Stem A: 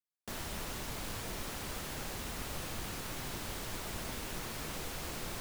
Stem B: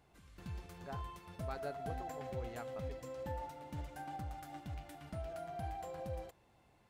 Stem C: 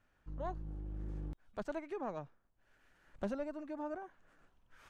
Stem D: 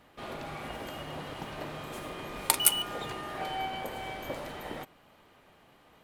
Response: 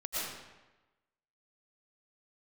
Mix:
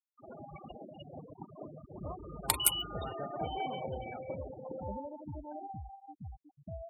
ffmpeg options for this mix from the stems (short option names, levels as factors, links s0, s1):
-filter_complex "[0:a]equalizer=f=1100:w=3.4:g=5,aeval=exprs='val(0)+0.00251*(sin(2*PI*50*n/s)+sin(2*PI*2*50*n/s)/2+sin(2*PI*3*50*n/s)/3+sin(2*PI*4*50*n/s)/4+sin(2*PI*5*50*n/s)/5)':c=same,volume=0.335[s0];[1:a]adelay=1550,volume=1.12[s1];[2:a]asoftclip=type=tanh:threshold=0.0282,adelay=1650,volume=0.708[s2];[3:a]volume=0.631[s3];[s0][s1][s2][s3]amix=inputs=4:normalize=0,highpass=62,afftfilt=real='re*gte(hypot(re,im),0.0251)':imag='im*gte(hypot(re,im),0.0251)':win_size=1024:overlap=0.75"